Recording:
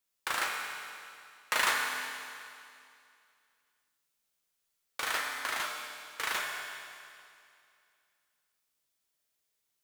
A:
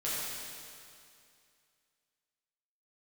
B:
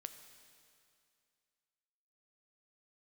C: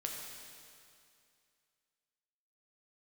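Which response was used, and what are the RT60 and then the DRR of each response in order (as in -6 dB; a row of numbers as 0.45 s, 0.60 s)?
C; 2.4 s, 2.4 s, 2.4 s; -10.0 dB, 8.0 dB, -0.5 dB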